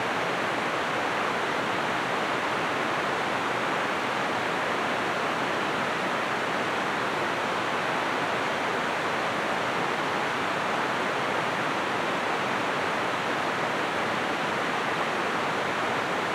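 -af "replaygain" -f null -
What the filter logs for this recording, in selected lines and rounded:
track_gain = +11.5 dB
track_peak = 0.148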